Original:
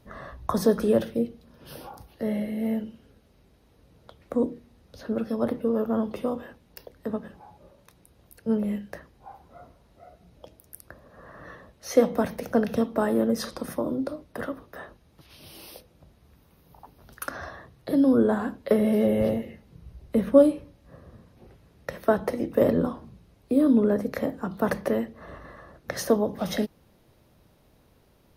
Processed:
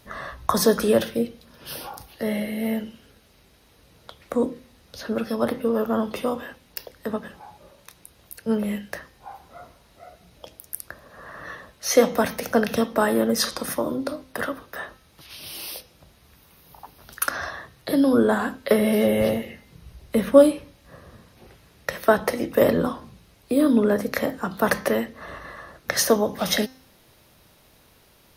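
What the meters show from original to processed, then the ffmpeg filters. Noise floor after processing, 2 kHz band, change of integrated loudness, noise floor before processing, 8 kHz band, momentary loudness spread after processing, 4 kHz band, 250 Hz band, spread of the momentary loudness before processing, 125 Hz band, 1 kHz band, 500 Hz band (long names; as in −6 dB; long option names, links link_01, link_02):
−57 dBFS, +9.5 dB, +2.5 dB, −61 dBFS, +12.0 dB, 19 LU, +11.5 dB, +1.0 dB, 22 LU, +1.0 dB, +6.0 dB, +3.0 dB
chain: -af "tiltshelf=frequency=970:gain=-6,bandreject=frequency=260.1:width_type=h:width=4,bandreject=frequency=520.2:width_type=h:width=4,bandreject=frequency=780.3:width_type=h:width=4,bandreject=frequency=1040.4:width_type=h:width=4,bandreject=frequency=1300.5:width_type=h:width=4,bandreject=frequency=1560.6:width_type=h:width=4,bandreject=frequency=1820.7:width_type=h:width=4,bandreject=frequency=2080.8:width_type=h:width=4,bandreject=frequency=2340.9:width_type=h:width=4,bandreject=frequency=2601:width_type=h:width=4,bandreject=frequency=2861.1:width_type=h:width=4,bandreject=frequency=3121.2:width_type=h:width=4,bandreject=frequency=3381.3:width_type=h:width=4,bandreject=frequency=3641.4:width_type=h:width=4,bandreject=frequency=3901.5:width_type=h:width=4,bandreject=frequency=4161.6:width_type=h:width=4,bandreject=frequency=4421.7:width_type=h:width=4,bandreject=frequency=4681.8:width_type=h:width=4,bandreject=frequency=4941.9:width_type=h:width=4,bandreject=frequency=5202:width_type=h:width=4,bandreject=frequency=5462.1:width_type=h:width=4,bandreject=frequency=5722.2:width_type=h:width=4,bandreject=frequency=5982.3:width_type=h:width=4,bandreject=frequency=6242.4:width_type=h:width=4,bandreject=frequency=6502.5:width_type=h:width=4,bandreject=frequency=6762.6:width_type=h:width=4,bandreject=frequency=7022.7:width_type=h:width=4,bandreject=frequency=7282.8:width_type=h:width=4,volume=6.5dB"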